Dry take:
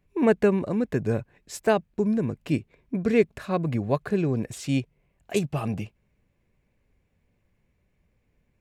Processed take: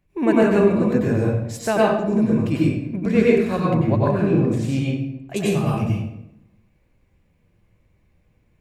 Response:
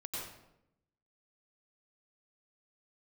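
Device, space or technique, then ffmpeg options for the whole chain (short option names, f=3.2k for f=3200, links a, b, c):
bathroom: -filter_complex "[0:a]bandreject=f=430:w=12[a];[1:a]atrim=start_sample=2205[b];[a][b]afir=irnorm=-1:irlink=0,asettb=1/sr,asplit=3[c][d][e];[c]atrim=end=3.744[f];[d]atrim=start=3.74:end=5.36,asetpts=PTS-STARTPTS,afade=t=in:d=0.004:c=qsin,afade=t=out:st=1.616:d=0.004:c=qsin,highshelf=f=3.6k:g=-9[g];[e]atrim=start=5.356[h];[f][g]acrossfade=d=0.004:c1=hsin:c2=qsin[i];[i][h]acrossfade=d=0.004:c1=qsin:c2=hsin,volume=6dB"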